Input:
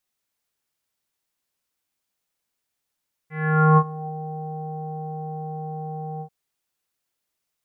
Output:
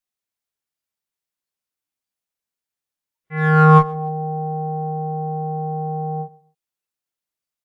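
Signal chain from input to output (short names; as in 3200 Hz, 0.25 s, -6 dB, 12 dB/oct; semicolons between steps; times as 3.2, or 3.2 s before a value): spectral noise reduction 15 dB; 3.69–4.91 high shelf 2200 Hz +4 dB; in parallel at -6 dB: one-sided clip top -25 dBFS; on the sum: feedback echo 0.131 s, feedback 26%, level -22 dB; gain +3.5 dB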